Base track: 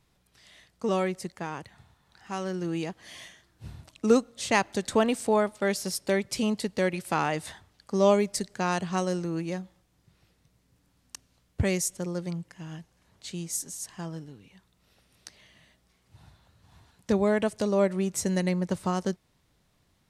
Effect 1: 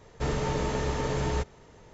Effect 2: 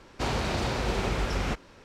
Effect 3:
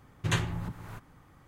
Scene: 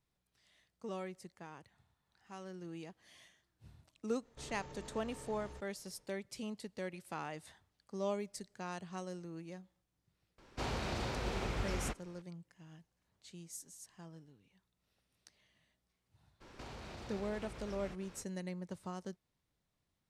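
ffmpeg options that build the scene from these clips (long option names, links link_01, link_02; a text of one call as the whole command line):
ffmpeg -i bed.wav -i cue0.wav -i cue1.wav -filter_complex "[2:a]asplit=2[link_01][link_02];[0:a]volume=-16dB[link_03];[1:a]alimiter=level_in=3dB:limit=-24dB:level=0:latency=1:release=15,volume=-3dB[link_04];[link_02]acompressor=threshold=-42dB:ratio=6:attack=3.2:release=140:knee=1:detection=peak[link_05];[link_04]atrim=end=1.93,asetpts=PTS-STARTPTS,volume=-16.5dB,afade=type=in:duration=0.1,afade=type=out:start_time=1.83:duration=0.1,adelay=183897S[link_06];[link_01]atrim=end=1.84,asetpts=PTS-STARTPTS,volume=-9.5dB,afade=type=in:duration=0.004:curve=hsin,afade=type=out:start_time=1.836:duration=0.004:curve=hsin,adelay=10380[link_07];[link_05]atrim=end=1.84,asetpts=PTS-STARTPTS,volume=-4.5dB,afade=type=in:duration=0.02,afade=type=out:start_time=1.82:duration=0.02,adelay=16400[link_08];[link_03][link_06][link_07][link_08]amix=inputs=4:normalize=0" out.wav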